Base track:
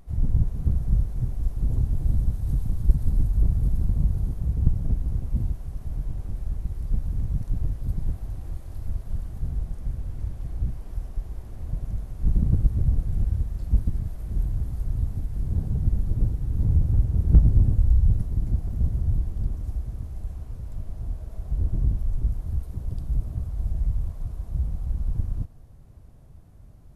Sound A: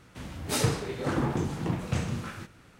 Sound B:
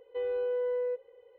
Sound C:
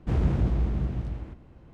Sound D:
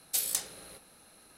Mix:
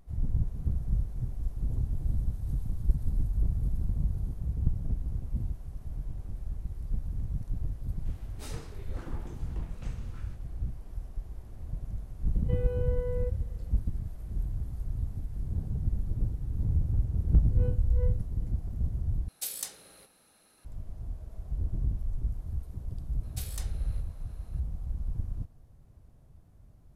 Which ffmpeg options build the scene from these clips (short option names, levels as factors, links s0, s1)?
-filter_complex "[2:a]asplit=2[s0][s1];[4:a]asplit=2[s2][s3];[0:a]volume=0.447[s4];[s1]aeval=exprs='val(0)*pow(10,-31*(0.5-0.5*cos(2*PI*2.6*n/s))/20)':c=same[s5];[s3]highshelf=f=3700:g=-9[s6];[s4]asplit=2[s7][s8];[s7]atrim=end=19.284[s9];[s2]atrim=end=1.37,asetpts=PTS-STARTPTS,volume=0.531[s10];[s8]atrim=start=20.646[s11];[1:a]atrim=end=2.79,asetpts=PTS-STARTPTS,volume=0.141,afade=t=in:d=0.004:c=hsin,afade=t=out:st=2.786:d=0.004:c=hsin,adelay=7900[s12];[s0]atrim=end=1.38,asetpts=PTS-STARTPTS,volume=0.596,afade=t=in:d=0.004:c=hsin,afade=t=out:st=1.376:d=0.004:c=hsin,adelay=12340[s13];[s5]atrim=end=1.38,asetpts=PTS-STARTPTS,volume=0.501,afade=t=in:d=0.004:c=hsin,afade=t=out:st=1.376:d=0.004:c=hsin,adelay=17270[s14];[s6]atrim=end=1.37,asetpts=PTS-STARTPTS,volume=0.531,afade=t=in:d=0.004:c=hsin,afade=t=out:st=1.366:d=0.004:c=hsin,adelay=23230[s15];[s9][s10]acrossfade=d=0.004:c1=hsin:c2=hsin[s16];[s16][s11]acrossfade=d=0.004:c1=hsin:c2=hsin[s17];[s17][s12][s13][s14][s15]amix=inputs=5:normalize=0"